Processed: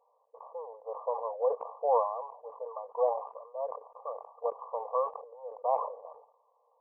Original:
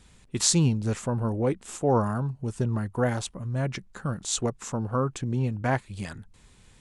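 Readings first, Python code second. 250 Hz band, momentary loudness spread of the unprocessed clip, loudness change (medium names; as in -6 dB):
under -40 dB, 11 LU, -6.5 dB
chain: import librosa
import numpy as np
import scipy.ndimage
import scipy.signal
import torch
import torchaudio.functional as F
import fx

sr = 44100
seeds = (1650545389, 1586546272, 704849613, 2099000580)

y = fx.brickwall_bandpass(x, sr, low_hz=450.0, high_hz=1200.0)
y = fx.sustainer(y, sr, db_per_s=91.0)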